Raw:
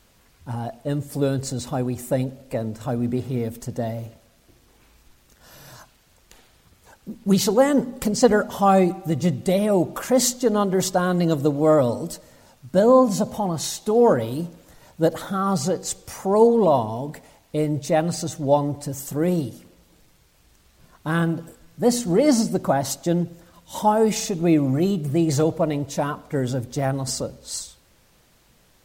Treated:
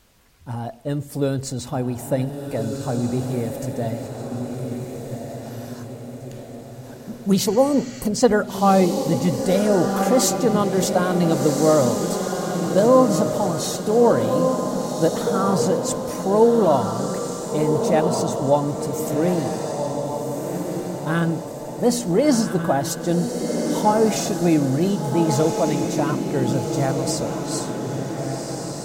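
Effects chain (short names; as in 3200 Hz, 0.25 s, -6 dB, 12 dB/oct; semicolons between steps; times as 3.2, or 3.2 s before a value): spectral repair 7.48–8.03, 1200–7900 Hz after; diffused feedback echo 1.485 s, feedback 51%, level -4.5 dB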